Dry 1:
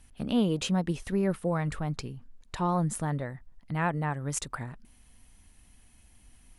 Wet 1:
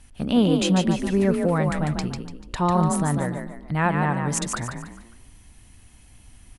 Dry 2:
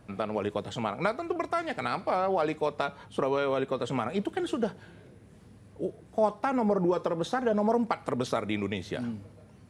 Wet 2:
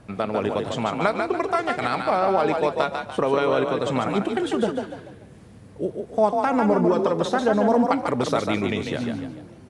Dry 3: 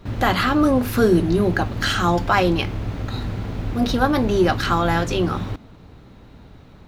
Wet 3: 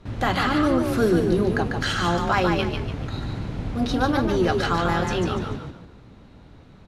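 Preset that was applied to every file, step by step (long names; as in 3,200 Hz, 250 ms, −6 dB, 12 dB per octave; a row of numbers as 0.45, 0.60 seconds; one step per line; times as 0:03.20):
low-pass filter 11,000 Hz 24 dB per octave
on a send: echo with shifted repeats 146 ms, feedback 36%, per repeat +36 Hz, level −5 dB
on the sum: loudness normalisation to −23 LKFS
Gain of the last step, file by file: +6.5, +6.0, −4.5 decibels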